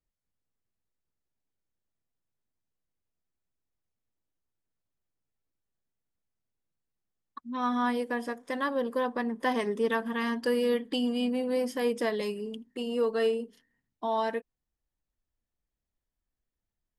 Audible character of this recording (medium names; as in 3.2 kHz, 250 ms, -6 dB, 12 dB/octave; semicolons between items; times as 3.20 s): noise floor -88 dBFS; spectral tilt -2.5 dB/octave